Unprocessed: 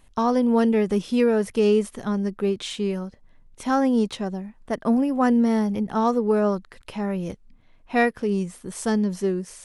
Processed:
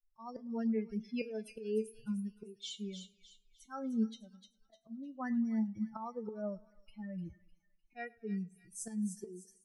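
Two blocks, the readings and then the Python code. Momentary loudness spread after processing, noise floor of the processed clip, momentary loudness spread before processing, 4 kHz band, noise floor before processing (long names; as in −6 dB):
14 LU, −75 dBFS, 11 LU, −13.5 dB, −55 dBFS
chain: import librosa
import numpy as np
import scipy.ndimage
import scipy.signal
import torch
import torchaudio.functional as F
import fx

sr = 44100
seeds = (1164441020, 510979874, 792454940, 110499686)

p1 = fx.bin_expand(x, sr, power=3.0)
p2 = fx.auto_swell(p1, sr, attack_ms=305.0)
p3 = fx.rider(p2, sr, range_db=4, speed_s=0.5)
p4 = fx.comb_fb(p3, sr, f0_hz=220.0, decay_s=0.19, harmonics='all', damping=0.0, mix_pct=80)
p5 = p4 + fx.echo_wet_highpass(p4, sr, ms=303, feedback_pct=34, hz=3000.0, wet_db=-6.0, dry=0)
y = fx.echo_warbled(p5, sr, ms=105, feedback_pct=45, rate_hz=2.8, cents=63, wet_db=-24.0)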